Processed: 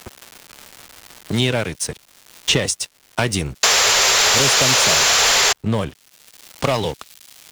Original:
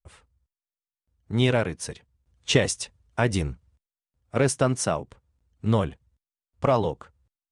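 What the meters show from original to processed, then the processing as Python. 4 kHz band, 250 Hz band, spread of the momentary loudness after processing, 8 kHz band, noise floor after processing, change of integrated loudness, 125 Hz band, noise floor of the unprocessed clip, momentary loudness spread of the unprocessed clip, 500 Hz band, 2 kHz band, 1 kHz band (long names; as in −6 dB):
+18.0 dB, +2.0 dB, 13 LU, +17.5 dB, −55 dBFS, +10.0 dB, +1.5 dB, below −85 dBFS, 11 LU, +2.5 dB, +14.0 dB, +9.0 dB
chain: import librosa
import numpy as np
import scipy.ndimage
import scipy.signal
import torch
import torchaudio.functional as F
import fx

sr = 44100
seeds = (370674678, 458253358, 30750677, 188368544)

y = fx.spec_paint(x, sr, seeds[0], shape='noise', start_s=3.63, length_s=1.9, low_hz=380.0, high_hz=7600.0, level_db=-16.0)
y = np.sign(y) * np.maximum(np.abs(y) - 10.0 ** (-43.5 / 20.0), 0.0)
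y = fx.dmg_crackle(y, sr, seeds[1], per_s=370.0, level_db=-51.0)
y = 10.0 ** (-14.5 / 20.0) * np.tanh(y / 10.0 ** (-14.5 / 20.0))
y = fx.band_squash(y, sr, depth_pct=70)
y = y * 10.0 ** (4.5 / 20.0)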